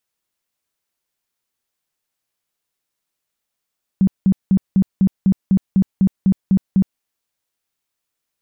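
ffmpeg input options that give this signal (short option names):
-f lavfi -i "aevalsrc='0.335*sin(2*PI*191*mod(t,0.25))*lt(mod(t,0.25),12/191)':d=3:s=44100"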